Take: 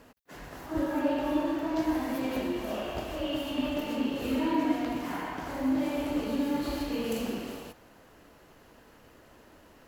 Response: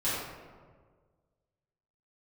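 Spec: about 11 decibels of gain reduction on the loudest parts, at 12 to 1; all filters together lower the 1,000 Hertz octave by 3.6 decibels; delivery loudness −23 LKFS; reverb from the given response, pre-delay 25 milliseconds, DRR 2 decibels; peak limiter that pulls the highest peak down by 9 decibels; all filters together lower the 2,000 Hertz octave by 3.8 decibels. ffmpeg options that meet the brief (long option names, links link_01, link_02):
-filter_complex "[0:a]equalizer=frequency=1000:width_type=o:gain=-3.5,equalizer=frequency=2000:width_type=o:gain=-4,acompressor=threshold=-34dB:ratio=12,alimiter=level_in=11dB:limit=-24dB:level=0:latency=1,volume=-11dB,asplit=2[link_01][link_02];[1:a]atrim=start_sample=2205,adelay=25[link_03];[link_02][link_03]afir=irnorm=-1:irlink=0,volume=-11dB[link_04];[link_01][link_04]amix=inputs=2:normalize=0,volume=17.5dB"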